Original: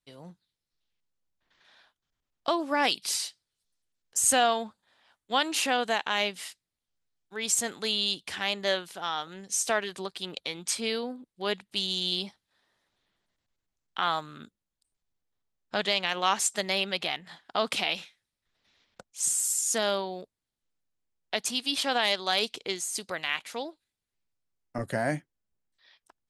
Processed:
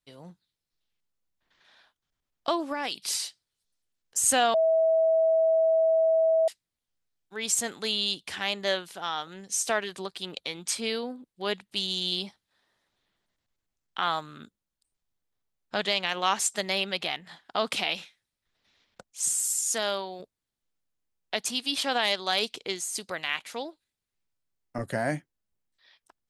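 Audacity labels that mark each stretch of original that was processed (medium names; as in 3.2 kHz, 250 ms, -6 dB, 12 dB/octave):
2.600000	3.050000	compression, threshold -26 dBFS
4.540000	6.480000	bleep 648 Hz -19 dBFS
19.350000	20.200000	bass shelf 420 Hz -6.5 dB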